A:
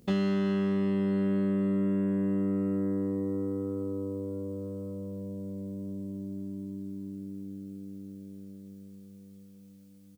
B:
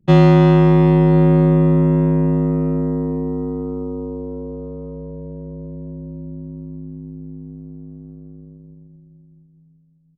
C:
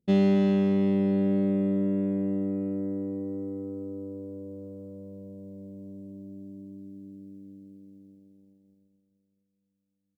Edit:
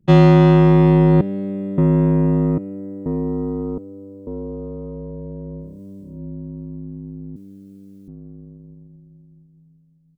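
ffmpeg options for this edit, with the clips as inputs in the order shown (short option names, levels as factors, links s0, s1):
-filter_complex "[2:a]asplit=3[s0][s1][s2];[0:a]asplit=2[s3][s4];[1:a]asplit=6[s5][s6][s7][s8][s9][s10];[s5]atrim=end=1.212[s11];[s0]atrim=start=1.208:end=1.782[s12];[s6]atrim=start=1.778:end=2.582[s13];[s1]atrim=start=2.578:end=3.062[s14];[s7]atrim=start=3.058:end=3.782[s15];[s2]atrim=start=3.778:end=4.272[s16];[s8]atrim=start=4.268:end=5.81[s17];[s3]atrim=start=5.57:end=6.23[s18];[s9]atrim=start=5.99:end=7.362[s19];[s4]atrim=start=7.358:end=8.082[s20];[s10]atrim=start=8.078[s21];[s11][s12]acrossfade=d=0.004:c1=hsin:c2=hsin[s22];[s22][s13]acrossfade=d=0.004:c1=hsin:c2=hsin[s23];[s23][s14]acrossfade=d=0.004:c1=hsin:c2=hsin[s24];[s24][s15]acrossfade=d=0.004:c1=hsin:c2=hsin[s25];[s25][s16]acrossfade=d=0.004:c1=hsin:c2=hsin[s26];[s26][s17]acrossfade=d=0.004:c1=hsin:c2=hsin[s27];[s27][s18]acrossfade=d=0.24:c1=tri:c2=tri[s28];[s28][s19]acrossfade=d=0.24:c1=tri:c2=tri[s29];[s29][s20]acrossfade=d=0.004:c1=hsin:c2=hsin[s30];[s30][s21]acrossfade=d=0.004:c1=hsin:c2=hsin"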